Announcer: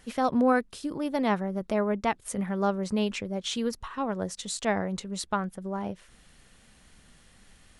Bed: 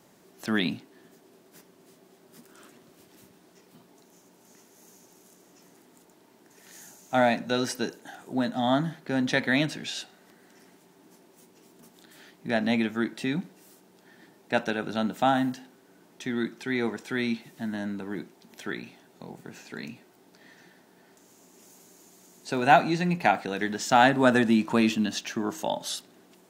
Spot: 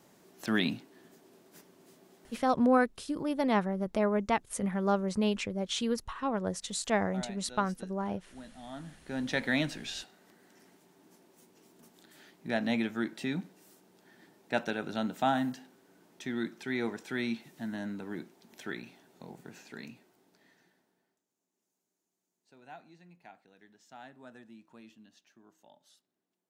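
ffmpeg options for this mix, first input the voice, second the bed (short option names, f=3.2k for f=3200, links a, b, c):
-filter_complex "[0:a]adelay=2250,volume=-1.5dB[a];[1:a]volume=14dB,afade=t=out:st=2.26:d=0.23:silence=0.112202,afade=t=in:st=8.72:d=0.76:silence=0.149624,afade=t=out:st=19.44:d=1.79:silence=0.0501187[b];[a][b]amix=inputs=2:normalize=0"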